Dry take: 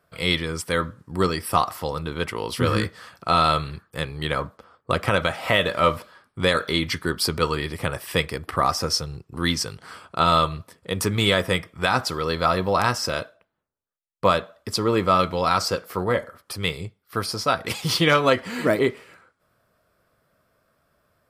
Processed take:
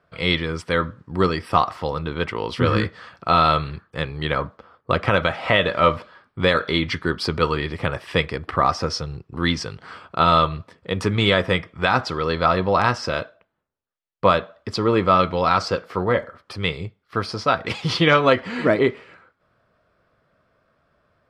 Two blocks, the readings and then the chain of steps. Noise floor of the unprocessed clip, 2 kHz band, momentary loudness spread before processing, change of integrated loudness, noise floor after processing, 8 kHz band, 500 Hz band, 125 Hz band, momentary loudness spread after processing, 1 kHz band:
-72 dBFS, +2.0 dB, 11 LU, +2.0 dB, -70 dBFS, -9.0 dB, +2.5 dB, +2.5 dB, 12 LU, +2.5 dB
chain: low-pass 3.8 kHz 12 dB/octave; trim +2.5 dB

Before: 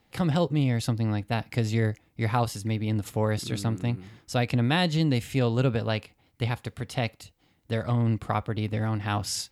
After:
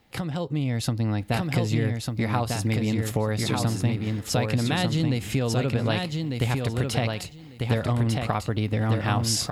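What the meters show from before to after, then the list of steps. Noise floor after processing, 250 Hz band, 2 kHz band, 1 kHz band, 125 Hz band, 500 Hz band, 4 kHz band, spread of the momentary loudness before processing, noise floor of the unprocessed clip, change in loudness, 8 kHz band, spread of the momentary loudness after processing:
-43 dBFS, +1.5 dB, +2.0 dB, +1.0 dB, +2.0 dB, +1.0 dB, +3.5 dB, 7 LU, -66 dBFS, +2.0 dB, +6.0 dB, 4 LU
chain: compression 10:1, threshold -31 dBFS, peak gain reduction 13 dB; feedback delay 1197 ms, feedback 15%, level -4 dB; level rider gain up to 6 dB; trim +3.5 dB

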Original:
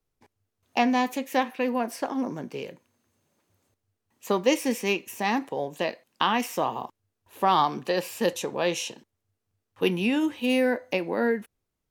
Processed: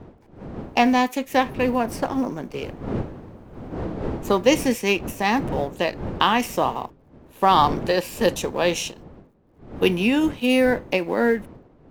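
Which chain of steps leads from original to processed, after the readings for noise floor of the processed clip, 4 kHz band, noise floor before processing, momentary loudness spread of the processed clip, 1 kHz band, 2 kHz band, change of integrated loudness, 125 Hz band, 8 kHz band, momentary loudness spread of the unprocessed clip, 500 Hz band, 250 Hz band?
-53 dBFS, +5.0 dB, -82 dBFS, 14 LU, +5.0 dB, +5.0 dB, +4.5 dB, +9.0 dB, +4.0 dB, 9 LU, +5.0 dB, +5.0 dB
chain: companding laws mixed up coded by A; wind noise 360 Hz -40 dBFS; trim +5.5 dB

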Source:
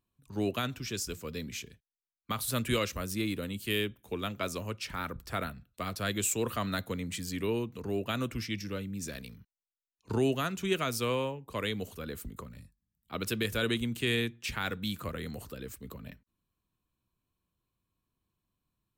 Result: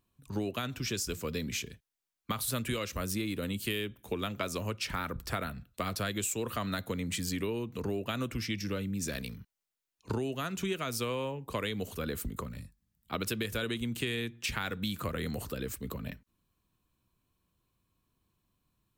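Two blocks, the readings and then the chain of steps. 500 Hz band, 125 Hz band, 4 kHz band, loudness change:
-2.0 dB, -0.5 dB, -1.0 dB, -1.5 dB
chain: compression 10:1, threshold -36 dBFS, peak gain reduction 14 dB; trim +6 dB

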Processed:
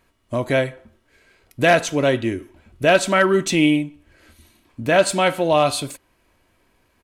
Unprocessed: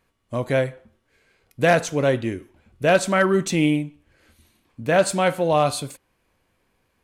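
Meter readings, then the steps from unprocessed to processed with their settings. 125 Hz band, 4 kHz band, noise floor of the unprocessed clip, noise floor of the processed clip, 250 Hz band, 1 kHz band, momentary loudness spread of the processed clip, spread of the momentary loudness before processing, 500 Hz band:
-0.5 dB, +5.5 dB, -70 dBFS, -64 dBFS, +2.5 dB, +2.5 dB, 12 LU, 13 LU, +2.0 dB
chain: dynamic bell 3 kHz, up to +5 dB, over -38 dBFS, Q 1.4; comb 3.1 ms, depth 30%; in parallel at -1 dB: compression, threshold -30 dBFS, peak gain reduction 17.5 dB

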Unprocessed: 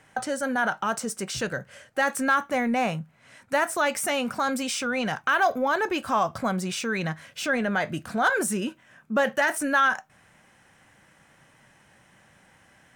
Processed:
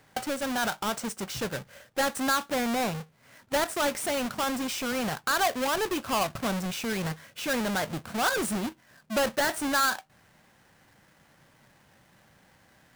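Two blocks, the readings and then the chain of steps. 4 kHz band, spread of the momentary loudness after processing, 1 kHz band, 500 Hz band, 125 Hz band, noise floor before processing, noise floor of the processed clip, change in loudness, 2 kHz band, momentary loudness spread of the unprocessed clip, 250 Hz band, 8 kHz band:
+1.5 dB, 8 LU, -4.0 dB, -3.0 dB, -2.0 dB, -59 dBFS, -62 dBFS, -3.0 dB, -5.5 dB, 8 LU, -2.5 dB, -0.5 dB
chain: square wave that keeps the level; trim -7 dB

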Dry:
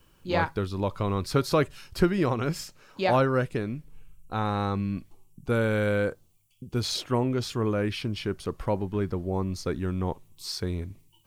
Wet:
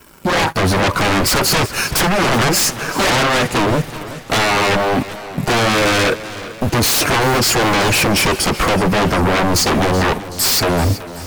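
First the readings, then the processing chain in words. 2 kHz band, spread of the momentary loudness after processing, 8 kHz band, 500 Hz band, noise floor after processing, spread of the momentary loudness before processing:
+18.5 dB, 6 LU, +24.5 dB, +10.0 dB, -31 dBFS, 11 LU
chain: drifting ripple filter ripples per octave 1.6, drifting -0.98 Hz, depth 6 dB; high-pass 170 Hz 6 dB/octave; peaking EQ 3.5 kHz -14 dB 0.47 oct; compression 6:1, threshold -32 dBFS, peak gain reduction 14 dB; waveshaping leveller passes 3; level rider gain up to 3.5 dB; flange 1.2 Hz, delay 2.7 ms, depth 4.3 ms, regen -44%; sine folder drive 13 dB, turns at -18.5 dBFS; modulated delay 379 ms, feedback 57%, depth 65 cents, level -15 dB; trim +7 dB

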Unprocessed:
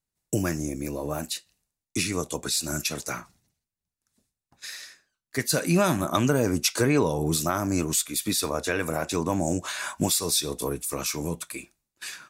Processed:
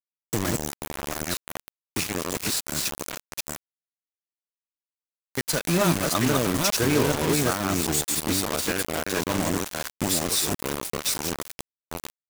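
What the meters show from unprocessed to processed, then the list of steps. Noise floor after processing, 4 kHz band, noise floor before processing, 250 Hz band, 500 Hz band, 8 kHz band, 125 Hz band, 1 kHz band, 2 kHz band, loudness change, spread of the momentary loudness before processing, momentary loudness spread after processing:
under -85 dBFS, +1.5 dB, under -85 dBFS, 0.0 dB, 0.0 dB, +1.0 dB, 0.0 dB, +1.5 dB, +2.0 dB, +1.0 dB, 14 LU, 13 LU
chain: chunks repeated in reverse 447 ms, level -2 dB; bit crusher 4-bit; trim -2 dB

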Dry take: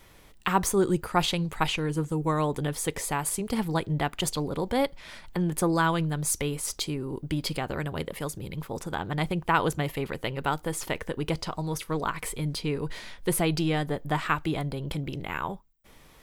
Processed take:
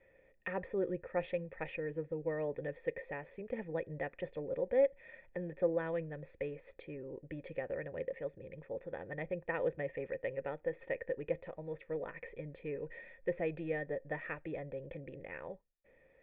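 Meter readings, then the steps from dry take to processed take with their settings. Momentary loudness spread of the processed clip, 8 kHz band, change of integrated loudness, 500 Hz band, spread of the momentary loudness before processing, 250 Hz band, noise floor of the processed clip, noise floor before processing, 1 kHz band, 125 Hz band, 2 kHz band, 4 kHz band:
11 LU, under -40 dB, -10.5 dB, -4.5 dB, 9 LU, -15.0 dB, -67 dBFS, -54 dBFS, -19.0 dB, -17.5 dB, -11.0 dB, under -25 dB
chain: cascade formant filter e; band-stop 1.1 kHz, Q 11; trim +2 dB

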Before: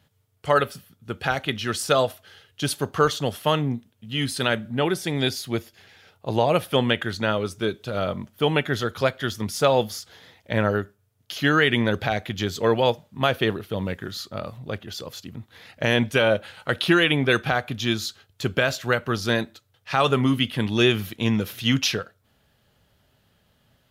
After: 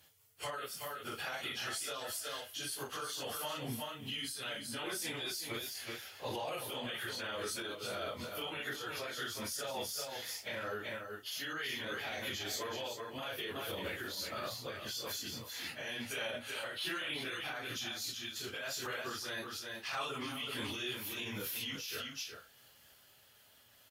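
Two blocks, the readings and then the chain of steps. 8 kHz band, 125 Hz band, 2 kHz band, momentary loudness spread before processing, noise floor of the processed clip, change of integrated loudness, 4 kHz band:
-6.0 dB, -24.0 dB, -14.5 dB, 13 LU, -64 dBFS, -16.0 dB, -11.0 dB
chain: phase randomisation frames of 100 ms; tilt EQ +3 dB/octave; compression 6:1, threshold -33 dBFS, peak gain reduction 18.5 dB; peaking EQ 180 Hz -6.5 dB 0.54 oct; band-stop 3.8 kHz, Q 21; delay 371 ms -8 dB; peak limiter -30.5 dBFS, peak gain reduction 10 dB; random flutter of the level, depth 55%; trim +2 dB

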